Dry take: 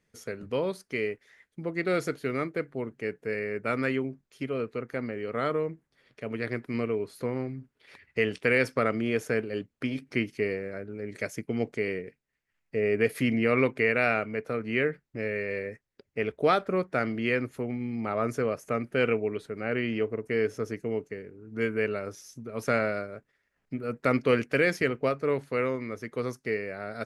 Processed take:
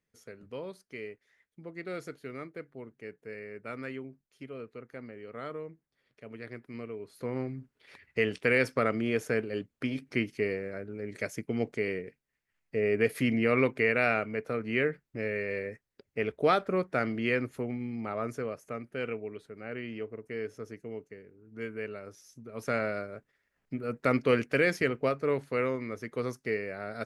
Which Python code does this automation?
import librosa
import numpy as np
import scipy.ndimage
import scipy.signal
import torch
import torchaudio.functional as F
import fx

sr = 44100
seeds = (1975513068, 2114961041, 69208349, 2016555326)

y = fx.gain(x, sr, db=fx.line((6.98, -11.0), (7.38, -1.5), (17.6, -1.5), (18.85, -9.5), (22.01, -9.5), (23.16, -1.5)))